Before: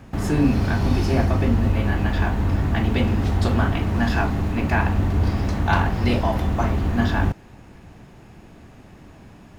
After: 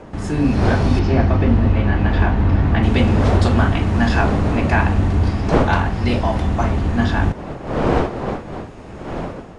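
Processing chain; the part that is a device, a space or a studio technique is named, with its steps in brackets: 0.99–2.83 air absorption 160 m; smartphone video outdoors (wind noise 570 Hz -29 dBFS; AGC gain up to 9 dB; gain -1.5 dB; AAC 96 kbps 22050 Hz)

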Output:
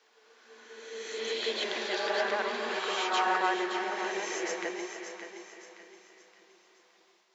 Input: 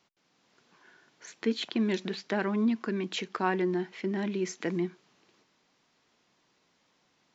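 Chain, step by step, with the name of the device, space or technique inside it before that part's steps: split-band echo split 350 Hz, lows 0.588 s, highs 0.303 s, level -11.5 dB; thinning echo 0.57 s, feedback 41%, high-pass 540 Hz, level -8.5 dB; ghost voice (reverse; reverb RT60 2.0 s, pre-delay 0.106 s, DRR -3.5 dB; reverse; HPF 460 Hz 24 dB/oct)

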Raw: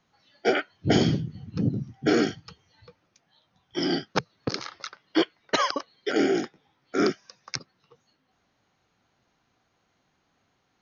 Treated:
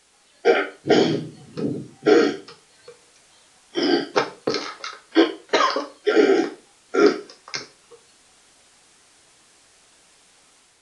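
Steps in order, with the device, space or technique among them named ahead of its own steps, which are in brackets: filmed off a television (BPF 280–6200 Hz; bell 440 Hz +7 dB 0.41 oct; reverb RT60 0.35 s, pre-delay 3 ms, DRR 0.5 dB; white noise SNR 30 dB; AGC gain up to 4 dB; AAC 64 kbps 22050 Hz)

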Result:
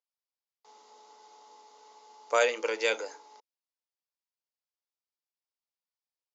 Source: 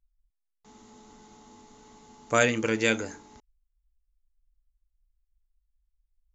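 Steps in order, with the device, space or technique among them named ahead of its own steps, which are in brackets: phone speaker on a table (speaker cabinet 450–6500 Hz, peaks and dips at 500 Hz +6 dB, 910 Hz +6 dB, 1700 Hz -4 dB, 4900 Hz +7 dB); gain -3 dB

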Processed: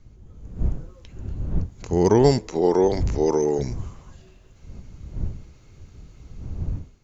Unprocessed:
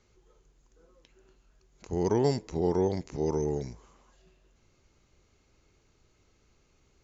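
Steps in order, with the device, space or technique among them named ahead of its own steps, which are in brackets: 2.48–3.59 HPF 270 Hz 12 dB/oct; smartphone video outdoors (wind noise 87 Hz -40 dBFS; AGC gain up to 10 dB; AAC 128 kbps 44100 Hz)

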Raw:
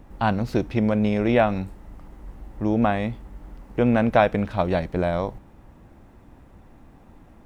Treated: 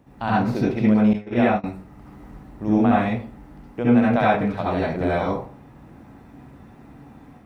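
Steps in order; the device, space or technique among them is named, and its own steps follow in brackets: far laptop microphone (reverb RT60 0.40 s, pre-delay 62 ms, DRR -6.5 dB; HPF 100 Hz 12 dB/oct; AGC gain up to 4 dB); 1.13–1.64 gate -13 dBFS, range -21 dB; gain -5.5 dB

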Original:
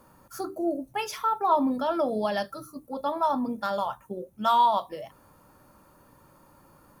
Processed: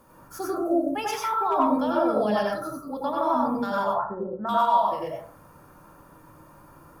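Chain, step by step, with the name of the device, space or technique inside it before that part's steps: 3.84–4.49 elliptic low-pass 1800 Hz, stop band 40 dB; clipper into limiter (hard clip -14 dBFS, distortion -33 dB; limiter -21 dBFS, peak gain reduction 7 dB); notch 4400 Hz, Q 22; plate-style reverb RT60 0.5 s, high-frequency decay 0.35×, pre-delay 80 ms, DRR -4.5 dB

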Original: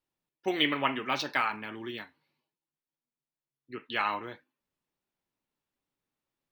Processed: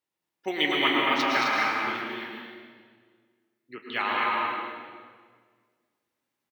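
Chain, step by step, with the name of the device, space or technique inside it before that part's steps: stadium PA (HPF 220 Hz 6 dB/oct; bell 2000 Hz +4.5 dB 0.22 oct; loudspeakers at several distances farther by 76 m -4 dB, 90 m -6 dB; reverb RT60 1.7 s, pre-delay 0.102 s, DRR -1 dB)

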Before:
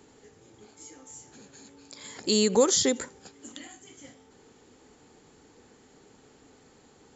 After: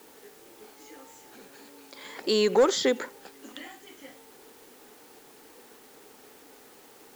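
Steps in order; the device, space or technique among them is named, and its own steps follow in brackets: tape answering machine (BPF 340–3100 Hz; soft clip -18 dBFS, distortion -16 dB; wow and flutter; white noise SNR 24 dB); 1.56–2 HPF 86 Hz; gain +5 dB

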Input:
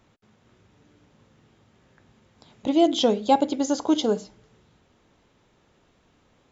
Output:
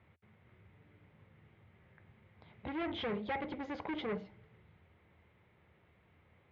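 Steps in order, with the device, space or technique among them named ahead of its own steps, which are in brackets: guitar amplifier (tube stage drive 28 dB, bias 0.3; tone controls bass +5 dB, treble -10 dB; speaker cabinet 80–3600 Hz, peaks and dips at 82 Hz +10 dB, 260 Hz -10 dB, 2100 Hz +10 dB); gain -6 dB

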